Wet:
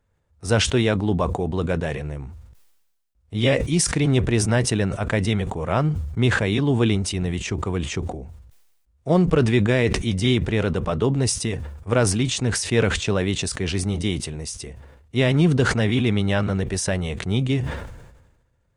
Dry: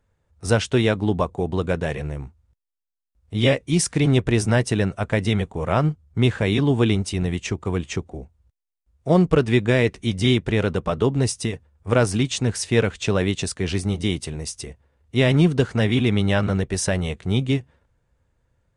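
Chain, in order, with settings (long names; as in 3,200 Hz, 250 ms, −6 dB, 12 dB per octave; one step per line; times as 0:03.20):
level that may fall only so fast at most 50 dB per second
level −1.5 dB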